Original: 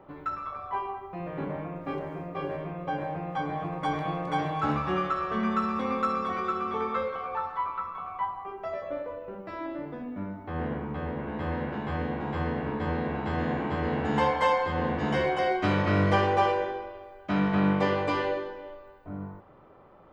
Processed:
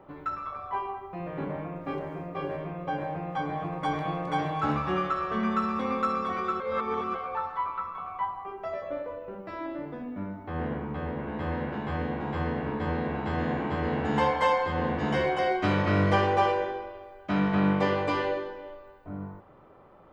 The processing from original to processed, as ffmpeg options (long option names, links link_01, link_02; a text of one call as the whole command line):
ffmpeg -i in.wav -filter_complex "[0:a]asplit=3[link_01][link_02][link_03];[link_01]atrim=end=6.602[link_04];[link_02]atrim=start=6.598:end=7.152,asetpts=PTS-STARTPTS,areverse[link_05];[link_03]atrim=start=7.148[link_06];[link_04][link_05]acrossfade=duration=0.004:curve1=hsin:curve2=hsin[link_07];[link_07][link_06]acrossfade=duration=0.004:curve1=hsin:curve2=hsin" out.wav